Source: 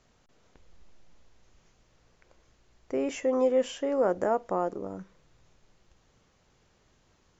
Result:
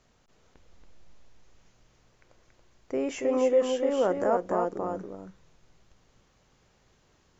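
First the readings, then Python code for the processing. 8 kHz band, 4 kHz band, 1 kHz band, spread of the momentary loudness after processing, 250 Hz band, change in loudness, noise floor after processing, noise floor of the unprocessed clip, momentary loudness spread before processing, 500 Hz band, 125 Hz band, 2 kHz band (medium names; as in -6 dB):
no reading, +1.5 dB, +1.0 dB, 13 LU, +1.0 dB, +1.5 dB, -66 dBFS, -67 dBFS, 13 LU, +1.5 dB, +1.5 dB, +1.5 dB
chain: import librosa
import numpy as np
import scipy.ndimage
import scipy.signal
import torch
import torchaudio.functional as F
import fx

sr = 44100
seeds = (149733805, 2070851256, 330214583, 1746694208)

y = x + 10.0 ** (-4.5 / 20.0) * np.pad(x, (int(280 * sr / 1000.0), 0))[:len(x)]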